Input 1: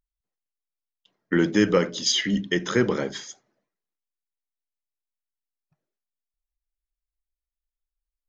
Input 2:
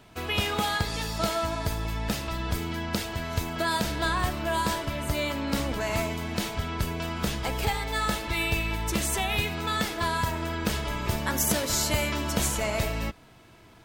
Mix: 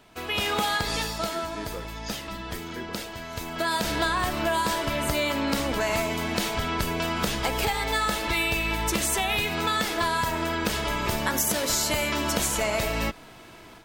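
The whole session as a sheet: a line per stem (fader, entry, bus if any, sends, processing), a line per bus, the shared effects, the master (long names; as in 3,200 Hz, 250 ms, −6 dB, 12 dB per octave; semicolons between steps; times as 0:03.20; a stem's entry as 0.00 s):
−18.0 dB, 0.00 s, no send, no processing
−0.5 dB, 0.00 s, no send, automatic gain control gain up to 9 dB; automatic ducking −10 dB, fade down 0.40 s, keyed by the first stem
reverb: not used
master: parametric band 88 Hz −8.5 dB 2 octaves; downward compressor, threshold −22 dBFS, peak gain reduction 8 dB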